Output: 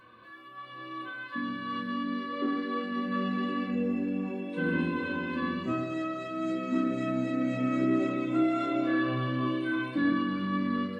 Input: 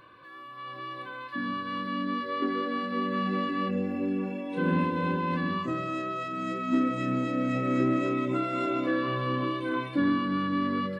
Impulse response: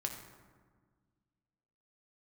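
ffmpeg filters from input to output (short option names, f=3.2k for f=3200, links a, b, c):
-filter_complex "[0:a]flanger=delay=3.9:depth=4.3:regen=67:speed=0.27:shape=triangular[a];[1:a]atrim=start_sample=2205,afade=t=out:st=0.37:d=0.01,atrim=end_sample=16758,asetrate=79380,aresample=44100[b];[a][b]afir=irnorm=-1:irlink=0,volume=7.5dB"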